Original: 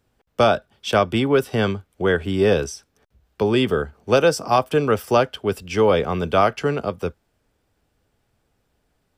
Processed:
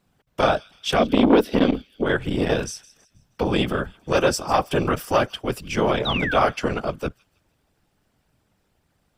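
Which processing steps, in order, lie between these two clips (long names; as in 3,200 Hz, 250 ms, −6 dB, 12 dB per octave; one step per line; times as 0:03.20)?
parametric band 410 Hz −5 dB 0.53 octaves
on a send: delay with a high-pass on its return 159 ms, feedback 39%, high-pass 3,200 Hz, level −19 dB
on the sum: random phases in short frames
in parallel at −2 dB: brickwall limiter −13 dBFS, peak gain reduction 9.5 dB
0:00.99–0:02.06: on the sum: octave-band graphic EQ 125/250/500/1,000/4,000/8,000 Hz −11/+12/+6/−9/+6/−8 dB
0:06.05–0:06.34: sound drawn into the spectrogram fall 1,400–4,000 Hz −22 dBFS
saturating transformer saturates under 630 Hz
level −3.5 dB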